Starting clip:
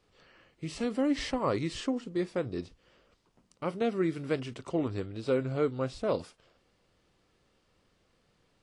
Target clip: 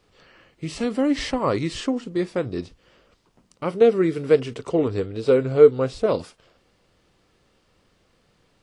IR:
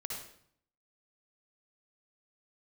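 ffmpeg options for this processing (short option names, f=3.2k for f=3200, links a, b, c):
-filter_complex "[0:a]asettb=1/sr,asplit=3[a][b][c];[a]atrim=end=3.744[d];[b]atrim=start=3.74:end=6.06,asetpts=PTS-STARTPTS,afade=t=in:d=0.004:c=qsin,afade=t=out:st=2.316:d=0.004:c=qsin,equalizer=f=450:w=5.9:g=11.5[e];[c]atrim=start=6.056[f];[d][e]acrossfade=d=0.004:c1=hsin:c2=qsin[g];[g][f]acrossfade=d=0.004:c1=qsin:c2=hsin,volume=7dB"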